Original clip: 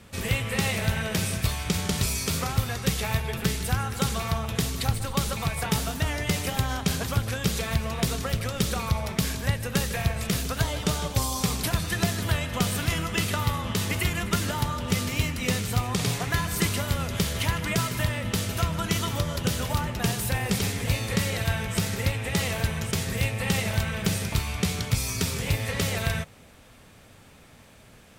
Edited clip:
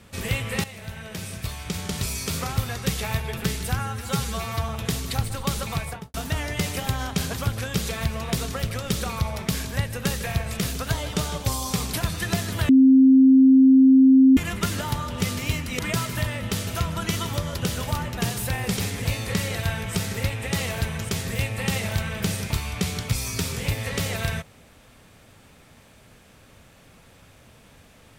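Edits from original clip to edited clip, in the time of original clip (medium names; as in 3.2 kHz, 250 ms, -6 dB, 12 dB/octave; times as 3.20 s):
0.64–2.51 s: fade in, from -15 dB
3.79–4.39 s: stretch 1.5×
5.49–5.84 s: studio fade out
12.39–14.07 s: bleep 264 Hz -10 dBFS
15.49–17.61 s: delete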